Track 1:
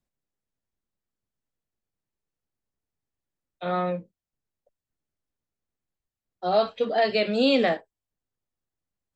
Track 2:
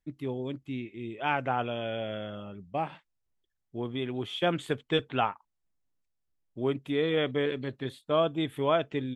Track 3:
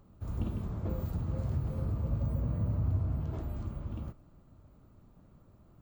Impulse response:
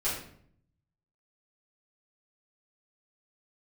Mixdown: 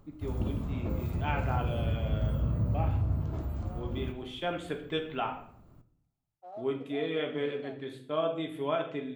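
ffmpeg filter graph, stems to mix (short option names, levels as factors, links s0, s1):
-filter_complex "[0:a]acompressor=threshold=0.0501:ratio=2,acrusher=bits=2:mode=log:mix=0:aa=0.000001,bandpass=f=670:t=q:w=2.4:csg=0,volume=0.133[s0];[1:a]highpass=140,volume=0.355,asplit=2[s1][s2];[s2]volume=0.422[s3];[2:a]volume=1.12,asplit=2[s4][s5];[s5]volume=0.141[s6];[3:a]atrim=start_sample=2205[s7];[s3][s6]amix=inputs=2:normalize=0[s8];[s8][s7]afir=irnorm=-1:irlink=0[s9];[s0][s1][s4][s9]amix=inputs=4:normalize=0"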